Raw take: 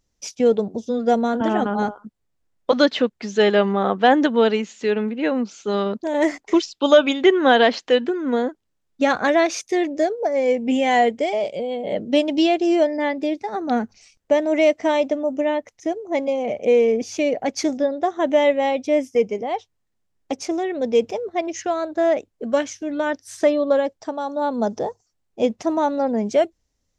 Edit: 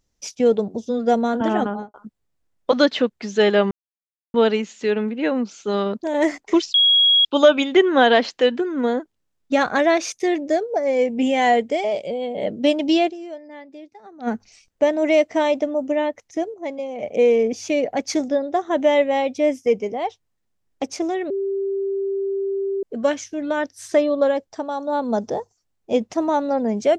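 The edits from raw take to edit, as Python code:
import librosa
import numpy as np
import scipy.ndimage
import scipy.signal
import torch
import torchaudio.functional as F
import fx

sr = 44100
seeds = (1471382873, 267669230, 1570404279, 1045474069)

y = fx.studio_fade_out(x, sr, start_s=1.61, length_s=0.33)
y = fx.edit(y, sr, fx.silence(start_s=3.71, length_s=0.63),
    fx.insert_tone(at_s=6.74, length_s=0.51, hz=3310.0, db=-11.5),
    fx.fade_down_up(start_s=12.58, length_s=1.19, db=-17.0, fade_s=0.22, curve='exp'),
    fx.clip_gain(start_s=16.03, length_s=0.49, db=-6.5),
    fx.bleep(start_s=20.79, length_s=1.53, hz=392.0, db=-20.5), tone=tone)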